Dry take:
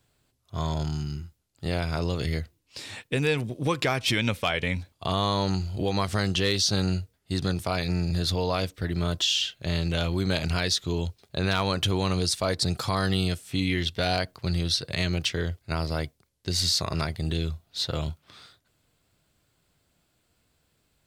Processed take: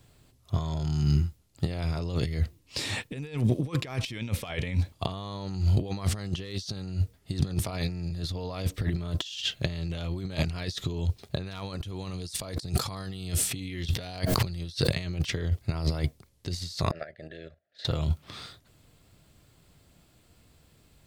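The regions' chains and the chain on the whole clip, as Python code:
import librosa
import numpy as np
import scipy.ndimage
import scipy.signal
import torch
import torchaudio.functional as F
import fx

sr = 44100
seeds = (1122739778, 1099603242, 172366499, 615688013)

y = fx.chain(x, sr, fx.high_shelf(hz=3800.0, db=4.5),
    fx.pre_swell(db_per_s=53.0), at=(11.46, 14.96))
y = fx.chain(y, sr, fx.double_bandpass(hz=1000.0, octaves=1.5),
    fx.level_steps(step_db=13), at=(16.91, 17.85))
y = fx.over_compress(y, sr, threshold_db=-32.0, ratio=-0.5)
y = fx.low_shelf(y, sr, hz=310.0, db=6.0)
y = fx.notch(y, sr, hz=1500.0, q=15.0)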